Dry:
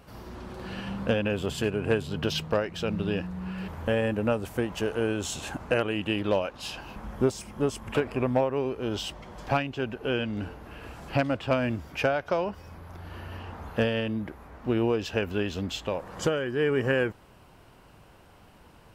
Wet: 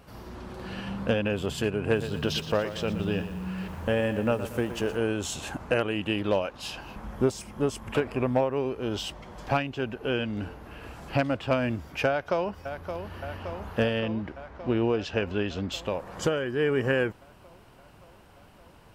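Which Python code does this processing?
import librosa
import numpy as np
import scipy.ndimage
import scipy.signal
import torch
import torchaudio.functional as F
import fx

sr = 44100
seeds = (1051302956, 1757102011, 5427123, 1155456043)

y = fx.echo_crushed(x, sr, ms=119, feedback_pct=55, bits=8, wet_db=-11.5, at=(1.8, 4.97))
y = fx.echo_throw(y, sr, start_s=12.08, length_s=1.1, ms=570, feedback_pct=75, wet_db=-8.5)
y = fx.lowpass(y, sr, hz=5900.0, slope=12, at=(13.99, 15.72))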